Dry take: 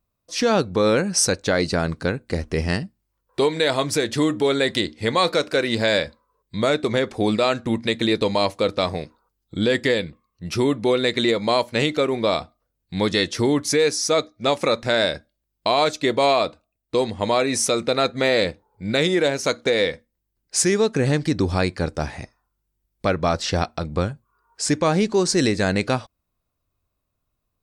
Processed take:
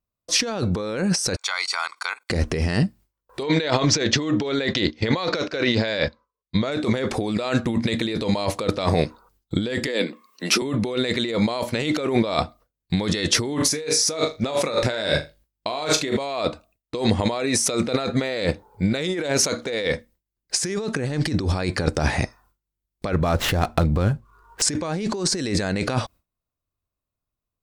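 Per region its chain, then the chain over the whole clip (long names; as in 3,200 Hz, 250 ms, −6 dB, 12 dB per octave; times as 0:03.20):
0:01.36–0:02.30: high-pass filter 870 Hz 24 dB per octave + output level in coarse steps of 19 dB + comb filter 0.9 ms, depth 64%
0:03.43–0:06.72: noise gate −35 dBFS, range −11 dB + Chebyshev low-pass filter 6,300 Hz, order 4
0:09.87–0:10.62: Butterworth high-pass 220 Hz + one half of a high-frequency compander encoder only
0:13.51–0:16.18: double-tracking delay 19 ms −10 dB + flutter between parallel walls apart 6.9 metres, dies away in 0.24 s
0:23.13–0:24.62: running median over 9 samples + low-shelf EQ 69 Hz +11 dB + downward compressor 1.5 to 1, threshold −31 dBFS
whole clip: compressor whose output falls as the input rises −28 dBFS, ratio −1; noise gate with hold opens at −54 dBFS; level +5 dB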